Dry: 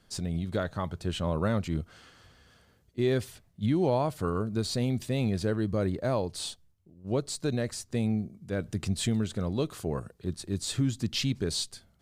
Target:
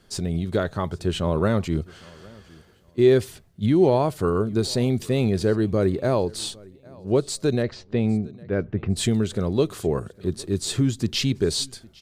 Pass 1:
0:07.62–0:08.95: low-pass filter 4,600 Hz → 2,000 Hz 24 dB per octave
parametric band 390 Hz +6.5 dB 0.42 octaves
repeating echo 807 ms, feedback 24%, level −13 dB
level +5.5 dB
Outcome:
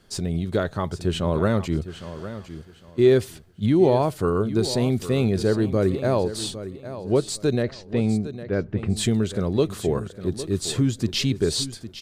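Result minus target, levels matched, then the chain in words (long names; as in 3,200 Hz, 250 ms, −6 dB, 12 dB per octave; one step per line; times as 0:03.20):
echo-to-direct +11.5 dB
0:07.62–0:08.95: low-pass filter 4,600 Hz → 2,000 Hz 24 dB per octave
parametric band 390 Hz +6.5 dB 0.42 octaves
repeating echo 807 ms, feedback 24%, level −24.5 dB
level +5.5 dB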